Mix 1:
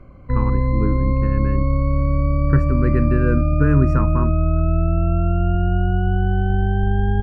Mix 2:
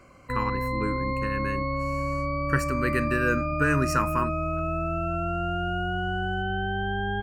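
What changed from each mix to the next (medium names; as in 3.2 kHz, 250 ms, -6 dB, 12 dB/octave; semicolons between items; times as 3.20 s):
speech: add treble shelf 3 kHz +12 dB; master: add tilt EQ +4 dB/octave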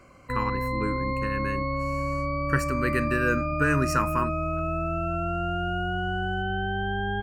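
no change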